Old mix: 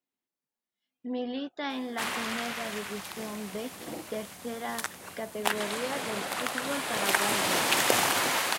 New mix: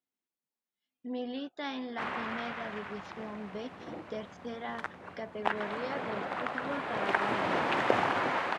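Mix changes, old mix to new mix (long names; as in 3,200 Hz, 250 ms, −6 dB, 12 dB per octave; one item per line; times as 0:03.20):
speech −3.5 dB
background: add low-pass filter 1,700 Hz 12 dB per octave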